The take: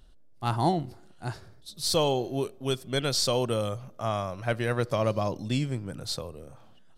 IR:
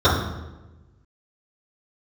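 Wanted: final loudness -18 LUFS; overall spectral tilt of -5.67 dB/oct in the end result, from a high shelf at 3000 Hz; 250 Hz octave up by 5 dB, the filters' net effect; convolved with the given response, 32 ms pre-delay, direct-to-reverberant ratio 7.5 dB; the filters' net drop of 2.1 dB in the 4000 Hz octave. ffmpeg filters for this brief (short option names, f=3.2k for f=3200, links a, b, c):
-filter_complex "[0:a]equalizer=f=250:t=o:g=6.5,highshelf=f=3k:g=3.5,equalizer=f=4k:t=o:g=-5.5,asplit=2[a][b];[1:a]atrim=start_sample=2205,adelay=32[c];[b][c]afir=irnorm=-1:irlink=0,volume=-30.5dB[d];[a][d]amix=inputs=2:normalize=0,volume=8dB"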